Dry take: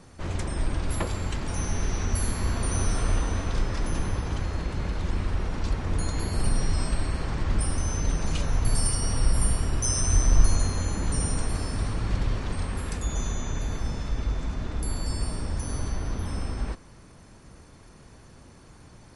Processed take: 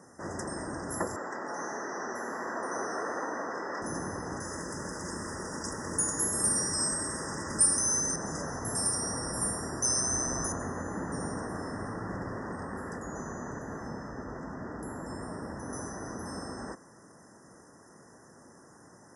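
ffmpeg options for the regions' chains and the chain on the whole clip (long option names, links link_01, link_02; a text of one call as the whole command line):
ffmpeg -i in.wav -filter_complex "[0:a]asettb=1/sr,asplit=3[link_01][link_02][link_03];[link_01]atrim=end=1.164[link_04];[link_02]atrim=start=1.16:end=3.82,asetpts=PTS-STARTPTS,afade=type=in:duration=0.004:curve=qsin,afade=type=out:start_time=2.656:duration=0.004:curve=qsin,acontrast=90,highpass=380,lowpass=3500,flanger=delay=3.1:depth=9.9:regen=71:speed=1.4:shape=sinusoidal[link_05];[link_03]atrim=start=3.816[link_06];[link_04][link_05]acrossfade=duration=0.004:curve1=hsin:curve2=qsin[link_07];[link_07][link_06]acrossfade=duration=0.004:curve1=qsin:curve2=hsin,asettb=1/sr,asplit=3[link_08][link_09][link_10];[link_08]atrim=end=4.404[link_11];[link_09]atrim=start=4.4:end=8.16,asetpts=PTS-STARTPTS,afade=type=in:duration=0.004:curve=qsin,afade=type=out:start_time=3.756:duration=0.004:curve=qsin,aemphasis=mode=production:type=75fm,bandreject=frequency=730:width=7.1[link_12];[link_10]atrim=start=8.156[link_13];[link_11][link_12]acrossfade=duration=0.004:curve1=hsin:curve2=qsin[link_14];[link_14][link_13]acrossfade=duration=0.004:curve1=qsin:curve2=hsin,asettb=1/sr,asplit=3[link_15][link_16][link_17];[link_15]atrim=end=10.524[link_18];[link_16]atrim=start=10.52:end=15.73,asetpts=PTS-STARTPTS,afade=type=in:duration=0.004:curve=qsin,afade=type=out:start_time=5.206:duration=0.004:curve=qsin,bass=frequency=250:gain=1,treble=frequency=4000:gain=-13,aecho=1:1:599:0.15,atrim=end_sample=229761[link_19];[link_17]atrim=start=15.726[link_20];[link_18][link_19]acrossfade=duration=0.004:curve1=hsin:curve2=qsin[link_21];[link_21][link_20]acrossfade=duration=0.004:curve1=qsin:curve2=hsin,highpass=220,afftfilt=real='re*(1-between(b*sr/4096,2000,4900))':imag='im*(1-between(b*sr/4096,2000,4900))':win_size=4096:overlap=0.75" out.wav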